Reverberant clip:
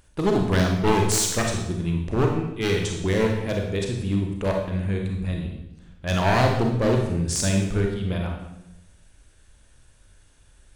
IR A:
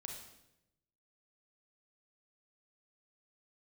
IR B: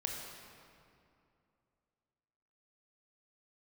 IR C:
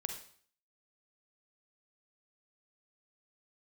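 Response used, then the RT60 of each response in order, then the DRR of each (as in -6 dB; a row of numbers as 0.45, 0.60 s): A; 0.90, 2.6, 0.50 s; 1.0, 0.0, 4.5 dB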